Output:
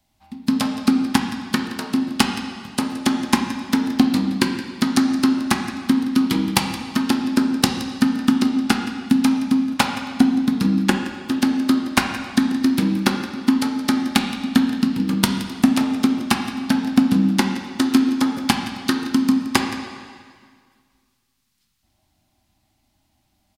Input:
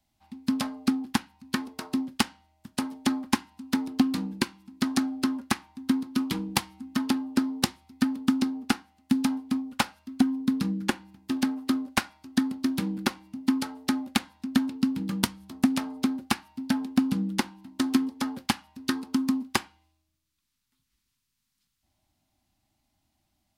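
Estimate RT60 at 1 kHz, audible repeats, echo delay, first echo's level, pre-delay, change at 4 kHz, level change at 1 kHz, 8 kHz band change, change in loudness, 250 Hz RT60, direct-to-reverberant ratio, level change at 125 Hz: 1.9 s, 1, 171 ms, -15.5 dB, 5 ms, +8.0 dB, +8.5 dB, +7.5 dB, +8.5 dB, 1.8 s, 3.5 dB, +9.5 dB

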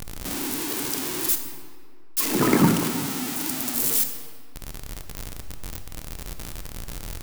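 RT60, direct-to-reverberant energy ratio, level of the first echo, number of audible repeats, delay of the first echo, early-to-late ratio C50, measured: 2.1 s, 6.0 dB, no echo, no echo, no echo, 7.5 dB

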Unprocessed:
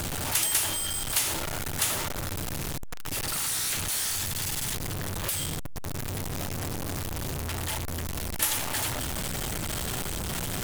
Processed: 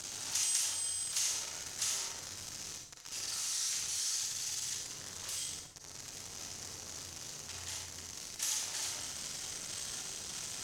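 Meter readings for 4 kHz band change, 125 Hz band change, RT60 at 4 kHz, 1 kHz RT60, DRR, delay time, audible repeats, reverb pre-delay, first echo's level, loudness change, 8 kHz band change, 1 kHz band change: -5.5 dB, -22.5 dB, 0.50 s, 0.50 s, 1.0 dB, no echo, no echo, 36 ms, no echo, -7.5 dB, -4.5 dB, -15.5 dB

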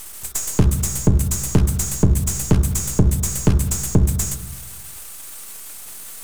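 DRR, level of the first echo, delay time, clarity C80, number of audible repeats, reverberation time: 9.0 dB, no echo, no echo, 14.0 dB, no echo, 1.1 s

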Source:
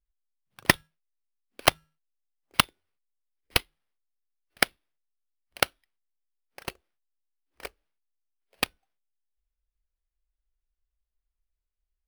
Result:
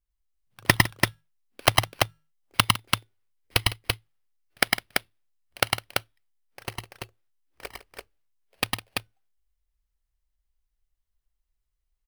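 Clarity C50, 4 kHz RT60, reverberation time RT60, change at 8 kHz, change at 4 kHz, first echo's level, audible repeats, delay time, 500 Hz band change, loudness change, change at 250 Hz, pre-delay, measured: no reverb, no reverb, no reverb, +3.5 dB, +4.0 dB, -2.0 dB, 3, 104 ms, +2.5 dB, +1.5 dB, +3.5 dB, no reverb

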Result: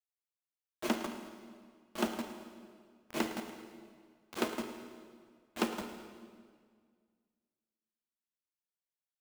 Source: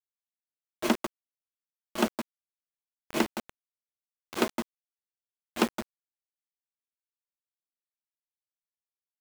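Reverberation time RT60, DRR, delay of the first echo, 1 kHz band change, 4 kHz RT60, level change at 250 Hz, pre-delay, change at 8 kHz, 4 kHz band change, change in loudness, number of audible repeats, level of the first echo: 1.9 s, 5.5 dB, 109 ms, -6.0 dB, 1.6 s, -6.0 dB, 21 ms, -6.0 dB, -6.0 dB, -7.0 dB, 3, -13.5 dB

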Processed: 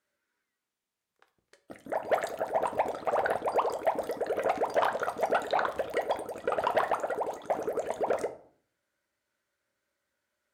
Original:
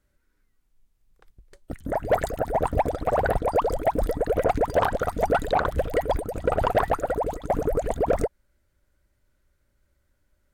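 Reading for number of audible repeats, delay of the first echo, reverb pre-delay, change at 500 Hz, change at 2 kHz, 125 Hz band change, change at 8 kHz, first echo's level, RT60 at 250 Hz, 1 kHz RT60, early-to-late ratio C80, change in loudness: no echo, no echo, 3 ms, -6.0 dB, -2.5 dB, -21.5 dB, -4.5 dB, no echo, 0.70 s, 0.55 s, 19.0 dB, -5.5 dB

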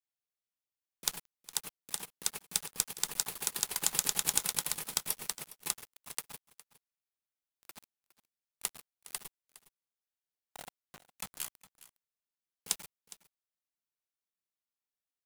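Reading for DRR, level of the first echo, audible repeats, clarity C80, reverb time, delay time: no reverb, -18.0 dB, 1, no reverb, no reverb, 411 ms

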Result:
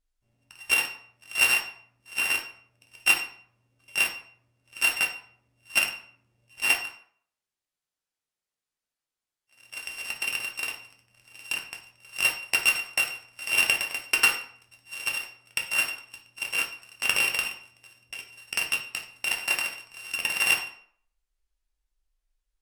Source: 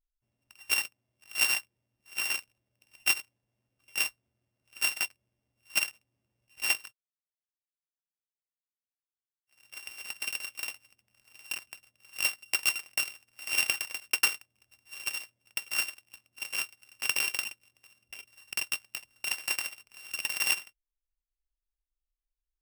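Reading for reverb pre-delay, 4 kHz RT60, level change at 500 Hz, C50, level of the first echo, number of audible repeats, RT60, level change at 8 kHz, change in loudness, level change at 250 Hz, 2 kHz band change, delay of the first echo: 7 ms, 0.40 s, +8.5 dB, 8.5 dB, no echo, no echo, 0.60 s, +2.5 dB, +5.0 dB, +8.5 dB, +7.0 dB, no echo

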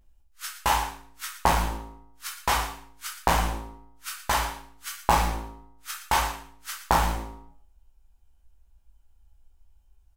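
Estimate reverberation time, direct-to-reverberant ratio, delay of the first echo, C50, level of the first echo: 0.50 s, -3.0 dB, 116 ms, 5.0 dB, -12.0 dB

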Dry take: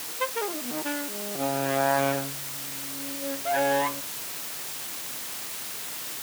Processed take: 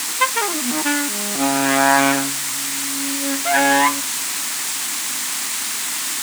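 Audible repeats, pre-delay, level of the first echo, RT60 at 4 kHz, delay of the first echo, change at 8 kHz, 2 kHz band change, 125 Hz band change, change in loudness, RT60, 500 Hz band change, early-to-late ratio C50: no echo, no reverb, no echo, no reverb, no echo, +15.0 dB, +13.5 dB, +1.5 dB, +10.5 dB, no reverb, +3.5 dB, no reverb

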